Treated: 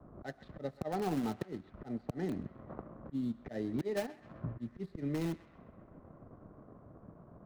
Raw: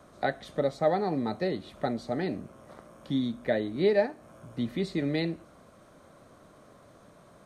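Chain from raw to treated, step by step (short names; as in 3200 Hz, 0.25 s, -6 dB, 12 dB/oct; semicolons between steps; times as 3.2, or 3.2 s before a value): median filter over 15 samples; low-pass opened by the level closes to 930 Hz, open at -26 dBFS; auto swell 0.477 s; in parallel at -9.5 dB: wrapped overs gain 31 dB; on the sum: bell 570 Hz -5 dB 0.38 oct; transient shaper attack +4 dB, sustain -9 dB; low shelf 400 Hz +4.5 dB; compressor 6:1, threshold -34 dBFS, peak gain reduction 9.5 dB; on a send: narrowing echo 0.13 s, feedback 75%, band-pass 1800 Hz, level -15 dB; on the sum: three-band expander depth 40%; gain +2 dB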